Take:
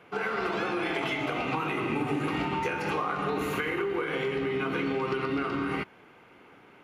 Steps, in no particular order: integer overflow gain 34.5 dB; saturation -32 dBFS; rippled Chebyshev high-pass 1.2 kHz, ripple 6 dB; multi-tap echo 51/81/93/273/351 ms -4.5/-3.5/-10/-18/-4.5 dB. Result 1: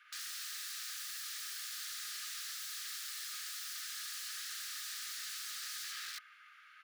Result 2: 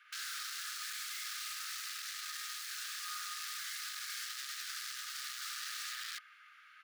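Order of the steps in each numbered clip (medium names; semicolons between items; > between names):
multi-tap echo > integer overflow > rippled Chebyshev high-pass > saturation; multi-tap echo > saturation > integer overflow > rippled Chebyshev high-pass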